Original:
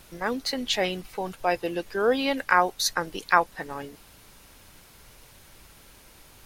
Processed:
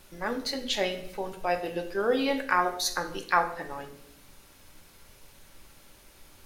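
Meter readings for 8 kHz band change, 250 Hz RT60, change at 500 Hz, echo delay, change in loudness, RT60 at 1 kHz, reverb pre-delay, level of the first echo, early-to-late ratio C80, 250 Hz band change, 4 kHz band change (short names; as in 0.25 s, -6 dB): -3.0 dB, 1.0 s, -2.5 dB, none, -3.0 dB, 0.60 s, 3 ms, none, 13.5 dB, -2.5 dB, -3.0 dB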